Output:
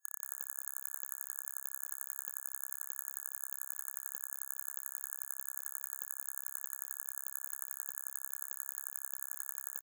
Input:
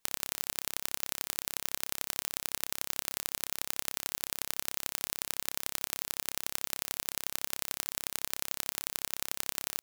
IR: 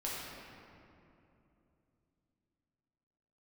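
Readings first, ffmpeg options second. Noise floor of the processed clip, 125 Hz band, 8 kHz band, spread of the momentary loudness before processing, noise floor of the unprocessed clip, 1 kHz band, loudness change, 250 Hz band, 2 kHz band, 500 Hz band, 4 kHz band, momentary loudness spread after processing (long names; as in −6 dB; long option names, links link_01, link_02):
−52 dBFS, below −40 dB, −5.5 dB, 1 LU, −77 dBFS, −9.5 dB, −5.5 dB, below −30 dB, −12.0 dB, below −15 dB, below −40 dB, 1 LU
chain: -af "afftfilt=real='re*(1-between(b*sr/4096,1700,6600))':imag='im*(1-between(b*sr/4096,1700,6600))':win_size=4096:overlap=0.75,highpass=1300,aecho=1:1:194:0.447,volume=-5dB"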